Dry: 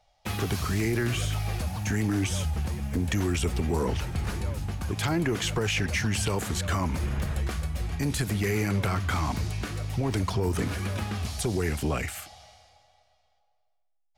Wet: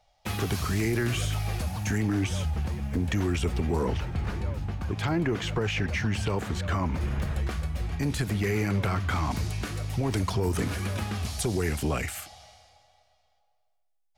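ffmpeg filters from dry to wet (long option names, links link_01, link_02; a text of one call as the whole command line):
ffmpeg -i in.wav -af "asetnsamples=nb_out_samples=441:pad=0,asendcmd='1.98 equalizer g -7.5;3.98 equalizer g -14;7.01 equalizer g -6;9.31 equalizer g 1.5',equalizer=frequency=11000:width_type=o:width=1.8:gain=0" out.wav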